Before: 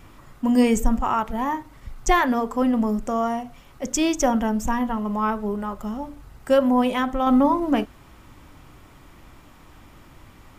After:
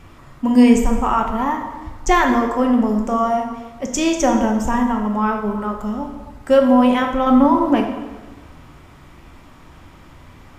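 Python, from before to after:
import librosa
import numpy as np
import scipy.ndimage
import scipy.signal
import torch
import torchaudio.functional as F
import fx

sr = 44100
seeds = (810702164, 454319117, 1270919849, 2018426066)

y = fx.high_shelf(x, sr, hz=9900.0, db=-10.0)
y = fx.rev_plate(y, sr, seeds[0], rt60_s=1.3, hf_ratio=0.75, predelay_ms=0, drr_db=3.0)
y = y * 10.0 ** (3.0 / 20.0)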